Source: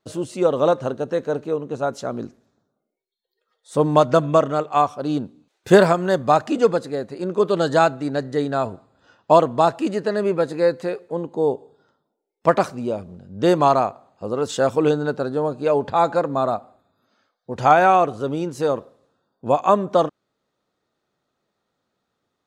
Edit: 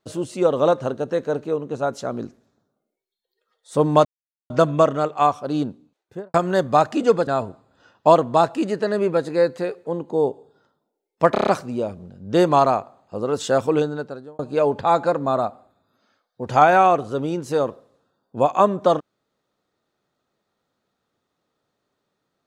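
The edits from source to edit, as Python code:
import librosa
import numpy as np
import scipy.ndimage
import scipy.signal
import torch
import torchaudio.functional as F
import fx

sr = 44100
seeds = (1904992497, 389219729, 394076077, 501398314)

y = fx.studio_fade_out(x, sr, start_s=5.16, length_s=0.73)
y = fx.edit(y, sr, fx.insert_silence(at_s=4.05, length_s=0.45),
    fx.cut(start_s=6.82, length_s=1.69),
    fx.stutter(start_s=12.56, slice_s=0.03, count=6),
    fx.fade_out_span(start_s=14.73, length_s=0.75), tone=tone)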